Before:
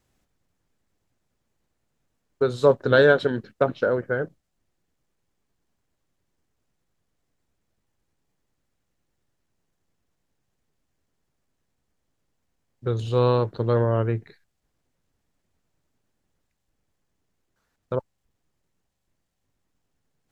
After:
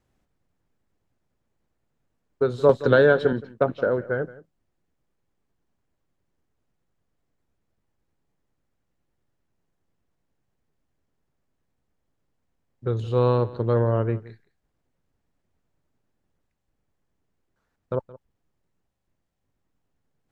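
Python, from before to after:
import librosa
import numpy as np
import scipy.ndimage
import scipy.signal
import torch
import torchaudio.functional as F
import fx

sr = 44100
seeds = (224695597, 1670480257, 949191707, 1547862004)

y = fx.high_shelf(x, sr, hz=2800.0, db=-9.0)
y = y + 10.0 ** (-19.0 / 20.0) * np.pad(y, (int(171 * sr / 1000.0), 0))[:len(y)]
y = fx.band_squash(y, sr, depth_pct=70, at=(2.69, 3.33))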